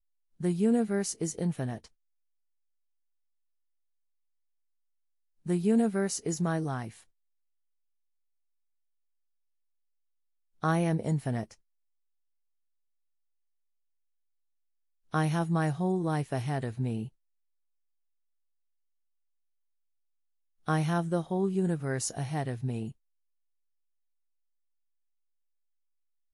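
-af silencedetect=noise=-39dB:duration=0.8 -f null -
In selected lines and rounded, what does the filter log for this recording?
silence_start: 1.78
silence_end: 5.46 | silence_duration: 3.68
silence_start: 6.89
silence_end: 10.63 | silence_duration: 3.74
silence_start: 11.51
silence_end: 15.14 | silence_duration: 3.63
silence_start: 17.07
silence_end: 20.68 | silence_duration: 3.61
silence_start: 22.91
silence_end: 26.33 | silence_duration: 3.43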